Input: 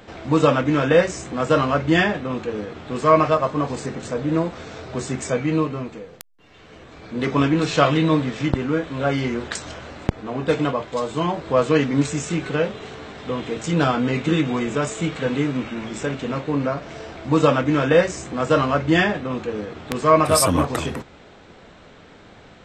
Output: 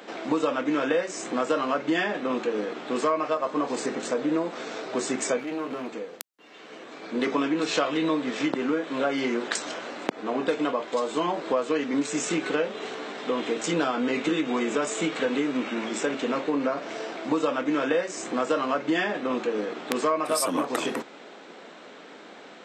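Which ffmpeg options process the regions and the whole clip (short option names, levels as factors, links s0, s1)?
-filter_complex "[0:a]asettb=1/sr,asplit=3[s0][s1][s2];[s0]atrim=end=5.394[s3];[s1]atrim=start=5.39:end=5.93,asetpts=PTS-STARTPTS,afade=t=in:d=0.004:c=qsin,afade=t=out:st=0.536:d=0.004:c=qsin,acompressor=threshold=0.0562:ratio=5:attack=3.2:release=140:knee=1:detection=peak,aeval=exprs='clip(val(0),-1,0.0211)':c=same[s4];[s2]atrim=start=5.926[s5];[s3][s4]acrossfade=d=0.004:c1=hsin:c2=qsin[s6];[s6][s5]acrossfade=d=0.004:c1=qsin:c2=hsin,highpass=f=240:w=0.5412,highpass=f=240:w=1.3066,acompressor=threshold=0.0631:ratio=6,volume=1.26"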